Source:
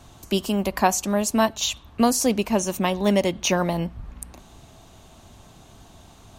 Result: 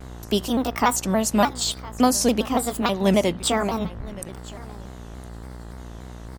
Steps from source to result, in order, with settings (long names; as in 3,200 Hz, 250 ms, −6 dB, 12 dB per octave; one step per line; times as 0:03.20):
pitch shifter gated in a rhythm +3.5 semitones, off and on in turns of 481 ms
hum with harmonics 60 Hz, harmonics 35, −39 dBFS −6 dB per octave
on a send: single-tap delay 1,012 ms −20 dB
on the sum: pitch modulation by a square or saw wave saw down 3.5 Hz, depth 160 cents
level +1 dB